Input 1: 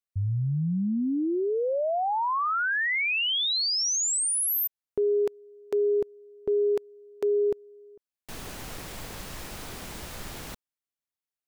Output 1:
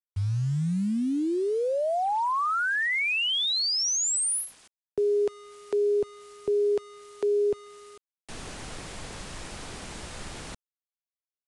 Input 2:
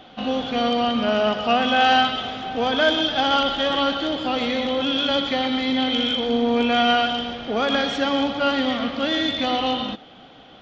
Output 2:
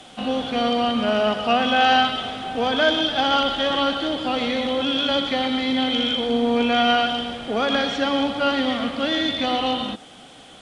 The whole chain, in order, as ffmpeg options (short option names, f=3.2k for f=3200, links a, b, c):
-filter_complex "[0:a]acrossover=split=130|730|2200[a][b][c][d];[d]acompressor=mode=upward:threshold=-41dB:ratio=2.5:attack=0.23:release=160:knee=2.83:detection=peak[e];[a][b][c][e]amix=inputs=4:normalize=0,acrusher=bits=7:mix=0:aa=0.000001,aresample=22050,aresample=44100"